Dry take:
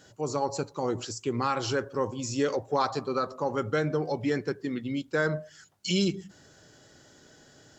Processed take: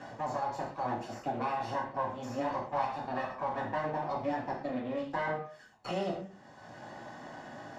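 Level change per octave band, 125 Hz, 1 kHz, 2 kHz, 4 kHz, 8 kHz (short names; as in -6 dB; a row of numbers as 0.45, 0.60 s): -9.5 dB, 0.0 dB, -6.0 dB, -13.5 dB, under -15 dB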